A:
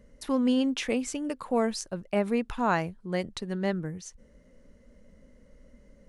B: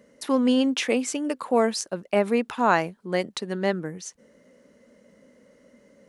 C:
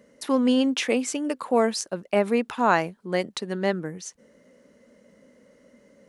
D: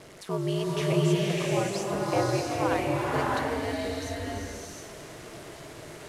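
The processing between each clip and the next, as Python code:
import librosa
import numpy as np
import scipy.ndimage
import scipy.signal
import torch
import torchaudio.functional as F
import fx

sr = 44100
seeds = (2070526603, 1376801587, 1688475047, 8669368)

y1 = scipy.signal.sosfilt(scipy.signal.butter(2, 240.0, 'highpass', fs=sr, output='sos'), x)
y1 = y1 * 10.0 ** (6.0 / 20.0)
y2 = y1
y3 = fx.delta_mod(y2, sr, bps=64000, step_db=-34.5)
y3 = y3 * np.sin(2.0 * np.pi * 100.0 * np.arange(len(y3)) / sr)
y3 = fx.rev_bloom(y3, sr, seeds[0], attack_ms=650, drr_db=-4.5)
y3 = y3 * 10.0 ** (-5.5 / 20.0)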